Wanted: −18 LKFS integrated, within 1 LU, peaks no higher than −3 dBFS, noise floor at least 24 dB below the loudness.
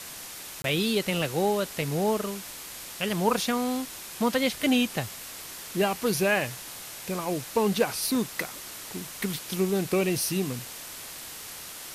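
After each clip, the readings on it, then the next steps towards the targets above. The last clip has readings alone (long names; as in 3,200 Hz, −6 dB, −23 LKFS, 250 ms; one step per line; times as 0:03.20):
number of dropouts 1; longest dropout 22 ms; background noise floor −41 dBFS; target noise floor −53 dBFS; integrated loudness −28.5 LKFS; sample peak −10.5 dBFS; target loudness −18.0 LKFS
→ repair the gap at 0:00.62, 22 ms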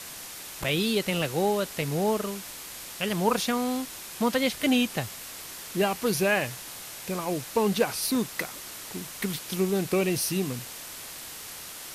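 number of dropouts 0; background noise floor −41 dBFS; target noise floor −53 dBFS
→ broadband denoise 12 dB, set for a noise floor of −41 dBFS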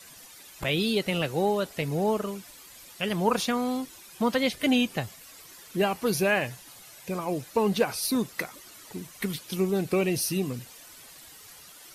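background noise floor −49 dBFS; target noise floor −52 dBFS
→ broadband denoise 6 dB, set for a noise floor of −49 dBFS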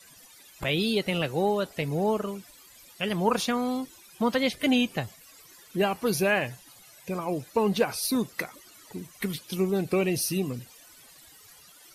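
background noise floor −53 dBFS; integrated loudness −27.5 LKFS; sample peak −11.0 dBFS; target loudness −18.0 LKFS
→ level +9.5 dB
brickwall limiter −3 dBFS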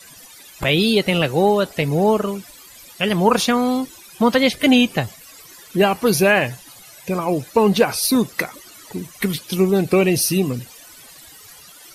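integrated loudness −18.5 LKFS; sample peak −3.0 dBFS; background noise floor −44 dBFS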